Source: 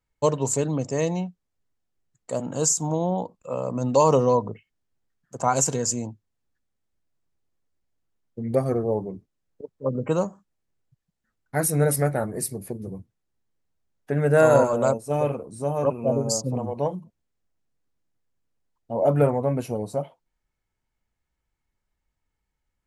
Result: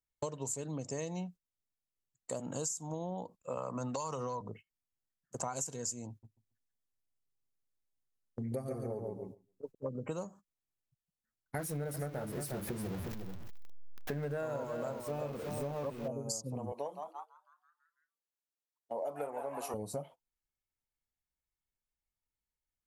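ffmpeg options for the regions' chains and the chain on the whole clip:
ffmpeg -i in.wav -filter_complex "[0:a]asettb=1/sr,asplit=3[link_01][link_02][link_03];[link_01]atrim=end=3.574[link_04];[link_02]atrim=start=3.57:end=4.41,asetpts=PTS-STARTPTS,afade=type=in:duration=0.004:curve=qsin,afade=type=out:start_time=0.836:duration=0.004:curve=qsin,equalizer=frequency=1300:width=1:gain=12,acrossover=split=140|3000[link_05][link_06][link_07];[link_06]acompressor=threshold=-18dB:ratio=6:attack=3.2:release=140:knee=2.83:detection=peak[link_08];[link_05][link_08][link_07]amix=inputs=3:normalize=0[link_09];[link_03]atrim=start=4.406[link_10];[link_04][link_09]acrossfade=duration=0.004:curve1=hsin:curve2=qsin[link_11];[link_11][link_10]acrossfade=duration=0.004:curve1=qsin:curve2=hsin,asettb=1/sr,asplit=3[link_12][link_13][link_14];[link_12]atrim=end=6.094[link_15];[link_13]atrim=start=6.09:end=9.75,asetpts=PTS-STARTPTS,afade=type=in:duration=0.004:curve=qsin,afade=type=out:start_time=3.656:duration=0.004:curve=qsin,aecho=1:1:7.5:0.43,atrim=end_sample=161406,aecho=1:1:139|278|417:0.596|0.125|0.0263,atrim=end_sample=161406[link_16];[link_14]atrim=start=9.746[link_17];[link_15][link_16]acrossfade=duration=0.004:curve1=hsin:curve2=qsin[link_18];[link_18][link_17]acrossfade=duration=0.004:curve1=qsin:curve2=hsin,asettb=1/sr,asplit=3[link_19][link_20][link_21];[link_19]atrim=end=11.584[link_22];[link_20]atrim=start=11.58:end=16.08,asetpts=PTS-STARTPTS,afade=type=in:duration=0.004:curve=qsin,afade=type=out:start_time=4.496:duration=0.004:curve=qsin,aeval=exprs='val(0)+0.5*0.0299*sgn(val(0))':channel_layout=same,equalizer=frequency=10000:width=0.61:gain=-14.5,aecho=1:1:358:0.299,atrim=end_sample=198450[link_23];[link_21]atrim=start=16.076[link_24];[link_22][link_23]acrossfade=duration=0.004:curve1=hsin:curve2=qsin[link_25];[link_25][link_24]acrossfade=duration=0.004:curve1=qsin:curve2=hsin,asettb=1/sr,asplit=3[link_26][link_27][link_28];[link_26]atrim=end=16.724[link_29];[link_27]atrim=start=16.72:end=19.74,asetpts=PTS-STARTPTS,afade=type=in:duration=0.004:curve=qsin,afade=type=out:start_time=3.016:duration=0.004:curve=qsin,highpass=420,asplit=8[link_30][link_31][link_32][link_33][link_34][link_35][link_36][link_37];[link_31]adelay=166,afreqshift=140,volume=-10dB[link_38];[link_32]adelay=332,afreqshift=280,volume=-14.9dB[link_39];[link_33]adelay=498,afreqshift=420,volume=-19.8dB[link_40];[link_34]adelay=664,afreqshift=560,volume=-24.6dB[link_41];[link_35]adelay=830,afreqshift=700,volume=-29.5dB[link_42];[link_36]adelay=996,afreqshift=840,volume=-34.4dB[link_43];[link_37]adelay=1162,afreqshift=980,volume=-39.3dB[link_44];[link_30][link_38][link_39][link_40][link_41][link_42][link_43][link_44]amix=inputs=8:normalize=0,atrim=end_sample=133182[link_45];[link_28]atrim=start=19.736[link_46];[link_29][link_45]acrossfade=duration=0.004:curve1=hsin:curve2=qsin[link_47];[link_47][link_46]acrossfade=duration=0.004:curve1=qsin:curve2=hsin,agate=range=-12dB:threshold=-41dB:ratio=16:detection=peak,aemphasis=mode=production:type=cd,acompressor=threshold=-31dB:ratio=10,volume=-4dB" out.wav

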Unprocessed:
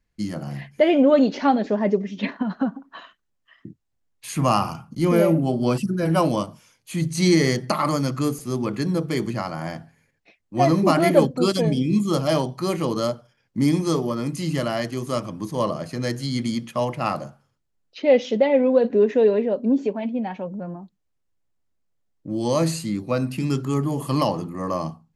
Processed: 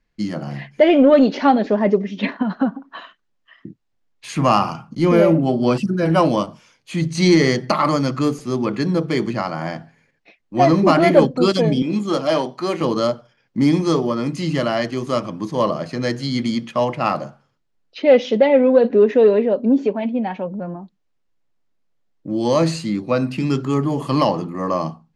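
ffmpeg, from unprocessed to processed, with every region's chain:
ffmpeg -i in.wav -filter_complex "[0:a]asettb=1/sr,asplit=3[link_01][link_02][link_03];[link_01]atrim=end=11.824[link_04];[link_02]atrim=start=11.82:end=12.81,asetpts=PTS-STARTPTS,afade=type=in:duration=0.004:curve=qsin,afade=type=out:start_time=0.986:duration=0.004:curve=qsin,aeval=exprs='if(lt(val(0),0),0.708*val(0),val(0))':channel_layout=same,highpass=230[link_05];[link_03]atrim=start=12.806[link_06];[link_04][link_05]acrossfade=duration=0.004:curve1=hsin:curve2=qsin[link_07];[link_07][link_06]acrossfade=duration=0.004:curve1=qsin:curve2=hsin,lowpass=5200,equalizer=frequency=75:width_type=o:width=1.2:gain=-11,acontrast=34" out.wav

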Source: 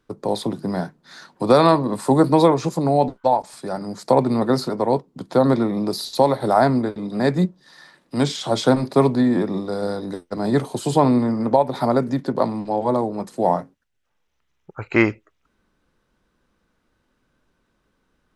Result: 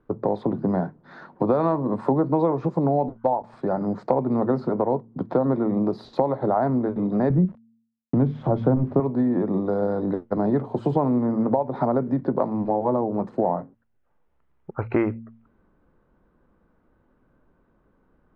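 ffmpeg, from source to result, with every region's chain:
ffmpeg -i in.wav -filter_complex "[0:a]asettb=1/sr,asplit=3[link_01][link_02][link_03];[link_01]atrim=end=7.304[link_04];[link_02]atrim=start=7.3:end=9,asetpts=PTS-STARTPTS,afade=type=in:duration=0.004:curve=qsin,afade=type=out:start_time=1.696:duration=0.004:curve=qsin,aemphasis=mode=reproduction:type=riaa,bandreject=frequency=50:width_type=h:width=6,bandreject=frequency=100:width_type=h:width=6,bandreject=frequency=150:width_type=h:width=6,bandreject=frequency=200:width_type=h:width=6,bandreject=frequency=250:width_type=h:width=6,aeval=exprs='val(0)*gte(abs(val(0)),0.0158)':channel_layout=same[link_05];[link_03]atrim=start=8.996[link_06];[link_04][link_05]acrossfade=duration=0.004:curve1=hsin:curve2=qsin[link_07];[link_07][link_06]acrossfade=duration=0.004:curve1=qsin:curve2=hsin,lowpass=1100,bandreject=frequency=113.7:width_type=h:width=4,bandreject=frequency=227.4:width_type=h:width=4,acompressor=threshold=-26dB:ratio=4,volume=6dB" out.wav

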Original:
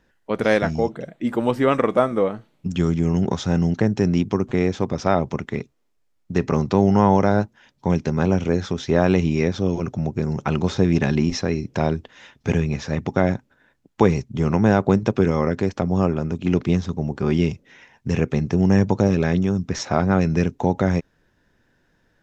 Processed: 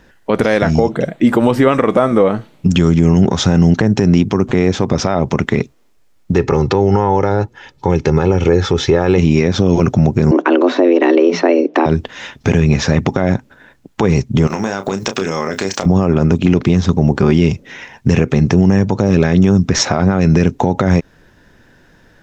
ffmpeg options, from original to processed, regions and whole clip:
ffmpeg -i in.wav -filter_complex "[0:a]asettb=1/sr,asplit=3[link_01][link_02][link_03];[link_01]atrim=end=6.334[link_04];[link_02]atrim=start=6.33:end=9.18,asetpts=PTS-STARTPTS,afade=type=in:duration=0.004:curve=qsin,afade=type=out:start_time=2.846:duration=0.004:curve=qsin,highshelf=frequency=5400:gain=-7,aecho=1:1:2.3:0.57,atrim=end_sample=125685[link_05];[link_03]atrim=start=9.176[link_06];[link_04][link_05]acrossfade=duration=0.004:curve1=hsin:curve2=qsin[link_07];[link_07][link_06]acrossfade=duration=0.004:curve1=qsin:curve2=hsin,asettb=1/sr,asplit=3[link_08][link_09][link_10];[link_08]atrim=end=10.314[link_11];[link_09]atrim=start=10.31:end=11.86,asetpts=PTS-STARTPTS,afade=type=in:duration=0.004:curve=qsin,afade=type=out:start_time=1.546:duration=0.004:curve=qsin,lowpass=2700,afreqshift=170[link_12];[link_10]atrim=start=11.856[link_13];[link_11][link_12]acrossfade=duration=0.004:curve1=hsin:curve2=qsin[link_14];[link_14][link_13]acrossfade=duration=0.004:curve1=qsin:curve2=hsin,asettb=1/sr,asplit=3[link_15][link_16][link_17];[link_15]atrim=end=14.474[link_18];[link_16]atrim=start=14.47:end=15.86,asetpts=PTS-STARTPTS,afade=type=in:duration=0.004:curve=qsin,afade=type=out:start_time=1.386:duration=0.004:curve=qsin,aemphasis=mode=production:type=riaa,acompressor=threshold=-29dB:ratio=16:attack=3.2:release=140:knee=1:detection=peak,asplit=2[link_19][link_20];[link_20]adelay=31,volume=-9dB[link_21];[link_19][link_21]amix=inputs=2:normalize=0,atrim=end_sample=61299[link_22];[link_17]atrim=start=15.856[link_23];[link_18][link_22]acrossfade=duration=0.004:curve1=hsin:curve2=qsin[link_24];[link_24][link_23]acrossfade=duration=0.004:curve1=qsin:curve2=hsin,acompressor=threshold=-21dB:ratio=3,alimiter=level_in=16.5dB:limit=-1dB:release=50:level=0:latency=1,volume=-1dB" out.wav

